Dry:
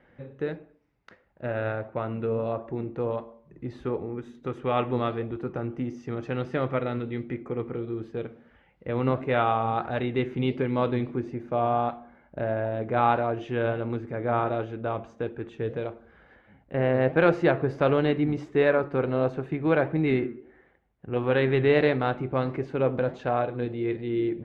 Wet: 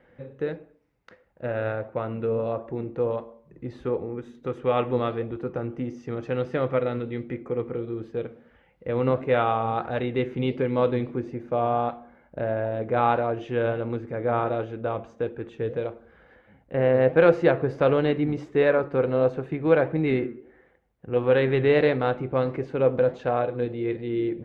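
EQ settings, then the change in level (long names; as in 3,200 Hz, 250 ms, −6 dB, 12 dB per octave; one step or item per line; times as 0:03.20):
parametric band 500 Hz +7 dB 0.2 octaves
0.0 dB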